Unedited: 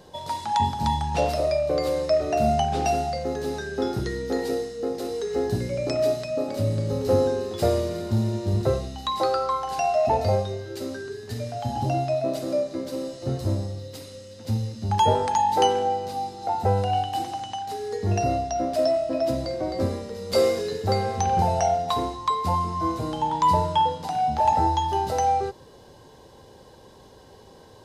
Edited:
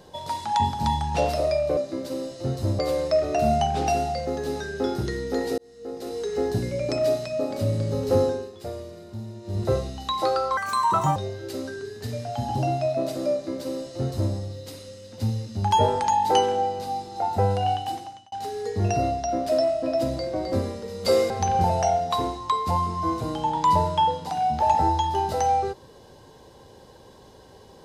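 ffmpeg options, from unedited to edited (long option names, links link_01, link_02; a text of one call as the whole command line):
ffmpeg -i in.wav -filter_complex "[0:a]asplit=10[link_01][link_02][link_03][link_04][link_05][link_06][link_07][link_08][link_09][link_10];[link_01]atrim=end=1.772[link_11];[link_02]atrim=start=12.588:end=13.612[link_12];[link_03]atrim=start=1.768:end=4.56,asetpts=PTS-STARTPTS,afade=type=out:start_time=2.788:duration=0.004:curve=hsin[link_13];[link_04]atrim=start=4.56:end=7.51,asetpts=PTS-STARTPTS,afade=type=in:duration=0.7,afade=type=out:start_time=2.63:duration=0.32:silence=0.237137[link_14];[link_05]atrim=start=7.51:end=8.39,asetpts=PTS-STARTPTS,volume=-12.5dB[link_15];[link_06]atrim=start=8.39:end=9.554,asetpts=PTS-STARTPTS,afade=type=in:duration=0.32:silence=0.237137[link_16];[link_07]atrim=start=9.55:end=10.43,asetpts=PTS-STARTPTS,asetrate=65709,aresample=44100[link_17];[link_08]atrim=start=10.426:end=17.59,asetpts=PTS-STARTPTS,afade=type=out:start_time=6.614:duration=0.55[link_18];[link_09]atrim=start=17.59:end=20.572,asetpts=PTS-STARTPTS,afade=type=in:duration=0.004:curve=hsin[link_19];[link_10]atrim=start=21.078[link_20];[link_11][link_12]acrossfade=duration=0.004:curve1=hsin:curve2=hsin[link_21];[link_13][link_14][link_15][link_16]concat=n=4:v=0:a=1[link_22];[link_21][link_22]acrossfade=duration=0.004:curve1=hsin:curve2=hsin[link_23];[link_23][link_17]acrossfade=duration=0.004:curve1=hsin:curve2=hsin[link_24];[link_18][link_19]concat=n=2:v=0:a=1[link_25];[link_24][link_25]acrossfade=duration=0.004:curve1=hsin:curve2=hsin[link_26];[link_26][link_20]acrossfade=duration=0.004:curve1=hsin:curve2=hsin" out.wav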